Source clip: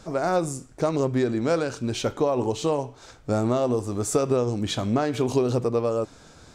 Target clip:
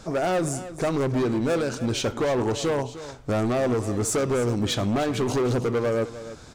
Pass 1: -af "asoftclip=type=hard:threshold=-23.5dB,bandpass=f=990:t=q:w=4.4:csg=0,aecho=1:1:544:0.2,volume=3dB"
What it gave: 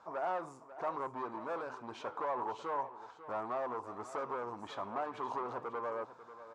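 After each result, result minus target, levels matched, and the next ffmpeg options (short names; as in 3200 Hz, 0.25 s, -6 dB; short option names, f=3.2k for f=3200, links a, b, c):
echo 0.24 s late; 1000 Hz band +9.5 dB
-af "asoftclip=type=hard:threshold=-23.5dB,bandpass=f=990:t=q:w=4.4:csg=0,aecho=1:1:304:0.2,volume=3dB"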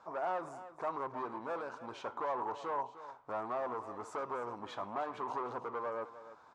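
1000 Hz band +9.5 dB
-af "asoftclip=type=hard:threshold=-23.5dB,aecho=1:1:304:0.2,volume=3dB"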